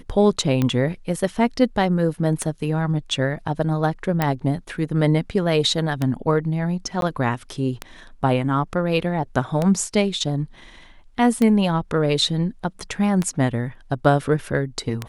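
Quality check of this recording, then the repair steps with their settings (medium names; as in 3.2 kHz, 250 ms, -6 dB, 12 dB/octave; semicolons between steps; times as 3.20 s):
tick 33 1/3 rpm -9 dBFS
4.22 s: pop
7.01–7.02 s: dropout 12 ms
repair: de-click; interpolate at 7.01 s, 12 ms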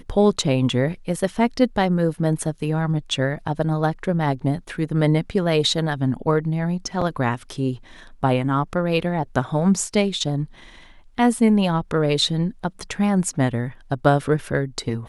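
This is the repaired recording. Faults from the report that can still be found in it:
nothing left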